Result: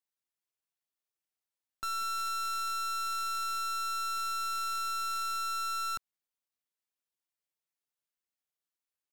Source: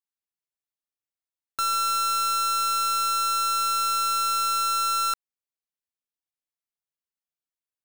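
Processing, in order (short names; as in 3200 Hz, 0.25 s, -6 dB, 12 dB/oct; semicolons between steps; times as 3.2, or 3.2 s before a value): low shelf 88 Hz -10 dB; tempo 0.86×; wrapped overs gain 28 dB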